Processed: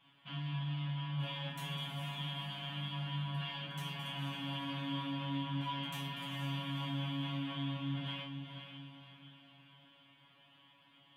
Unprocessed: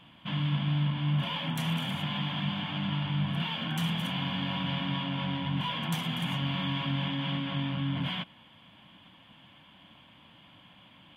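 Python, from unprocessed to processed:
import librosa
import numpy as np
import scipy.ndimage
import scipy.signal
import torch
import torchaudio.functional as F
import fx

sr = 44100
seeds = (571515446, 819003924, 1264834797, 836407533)

p1 = fx.low_shelf(x, sr, hz=340.0, db=-7.0)
p2 = fx.comb_fb(p1, sr, f0_hz=140.0, decay_s=0.31, harmonics='all', damping=0.0, mix_pct=100)
p3 = p2 + fx.echo_diffused(p2, sr, ms=485, feedback_pct=46, wet_db=-7.0, dry=0)
y = p3 * 10.0 ** (2.0 / 20.0)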